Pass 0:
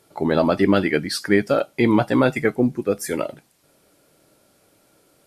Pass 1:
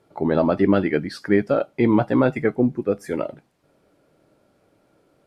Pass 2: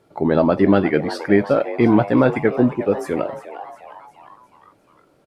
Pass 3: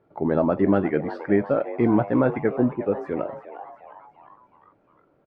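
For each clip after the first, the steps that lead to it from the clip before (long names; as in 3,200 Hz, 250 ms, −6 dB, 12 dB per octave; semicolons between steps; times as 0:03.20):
low-pass filter 1,300 Hz 6 dB per octave
echo with shifted repeats 356 ms, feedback 54%, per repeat +150 Hz, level −14 dB; level +3 dB
low-pass filter 1,800 Hz 12 dB per octave; level −5 dB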